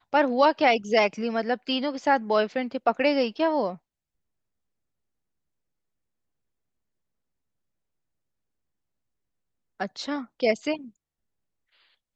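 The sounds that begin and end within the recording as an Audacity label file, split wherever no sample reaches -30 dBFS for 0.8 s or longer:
9.800000	10.750000	sound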